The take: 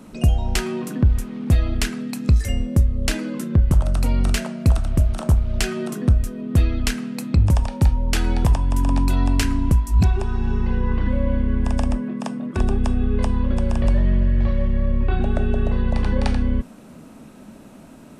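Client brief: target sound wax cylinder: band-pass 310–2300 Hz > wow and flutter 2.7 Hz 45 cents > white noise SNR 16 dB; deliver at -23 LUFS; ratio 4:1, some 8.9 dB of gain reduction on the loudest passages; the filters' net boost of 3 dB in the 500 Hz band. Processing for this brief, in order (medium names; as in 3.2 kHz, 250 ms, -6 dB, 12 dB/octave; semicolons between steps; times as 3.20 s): peaking EQ 500 Hz +5 dB; compression 4:1, threshold -22 dBFS; band-pass 310–2300 Hz; wow and flutter 2.7 Hz 45 cents; white noise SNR 16 dB; trim +12 dB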